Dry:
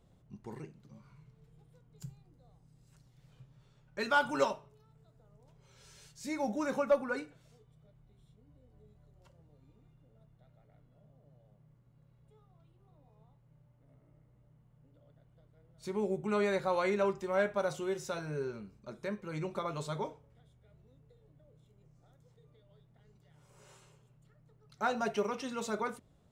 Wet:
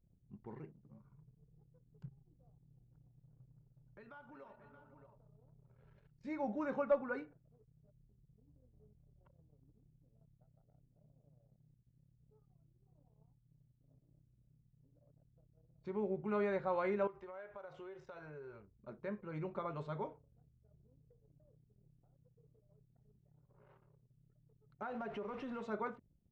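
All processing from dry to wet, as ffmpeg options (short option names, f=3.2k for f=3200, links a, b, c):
-filter_complex "[0:a]asettb=1/sr,asplit=3[a][b][c];[a]atrim=end=2.084[d];[b]atrim=start=2.08:end=5.99,asetpts=PTS-STARTPTS,afade=t=in:d=0.004:c=qsin,afade=t=out:st=3.906:d=0.004:c=qsin,acompressor=threshold=-52dB:ratio=4:attack=3.2:release=140:knee=1:detection=peak,aecho=1:1:351|366|506|626:0.2|0.119|0.211|0.335,atrim=end_sample=172431[e];[c]atrim=start=5.986[f];[d][e]acrossfade=d=0.004:c1=hsin:c2=qsin[g];[g][f]acrossfade=d=0.004:c1=qsin:c2=hsin,asettb=1/sr,asplit=3[h][i][j];[h]atrim=end=17.074[k];[i]atrim=start=17.07:end=18.79,asetpts=PTS-STARTPTS,afade=t=in:d=0.004:c=qsin,afade=t=out:st=1.716:d=0.004:c=qsin,equalizer=f=210:t=o:w=1:g=-14.5,acompressor=threshold=-42dB:ratio=6:attack=3.2:release=140:knee=1:detection=peak[l];[j]atrim=start=18.786[m];[k][l]acrossfade=d=0.004:c1=hsin:c2=qsin[n];[n][m]acrossfade=d=0.004:c1=qsin:c2=hsin,asettb=1/sr,asplit=3[o][p][q];[o]atrim=end=24.824[r];[p]atrim=start=24.82:end=25.63,asetpts=PTS-STARTPTS,afade=t=in:d=0.004:c=qsin,afade=t=out:st=0.806:d=0.004:c=qsin,aeval=exprs='val(0)+0.5*0.01*sgn(val(0))':c=same,equalizer=f=5.7k:t=o:w=1.3:g=-4.5,acompressor=threshold=-35dB:ratio=5:attack=3.2:release=140:knee=1:detection=peak[s];[q]atrim=start=25.626[t];[r][s]acrossfade=d=0.004:c1=hsin:c2=qsin[u];[u][t]acrossfade=d=0.004:c1=qsin:c2=hsin,lowpass=2k,anlmdn=0.0000398,volume=-4.5dB"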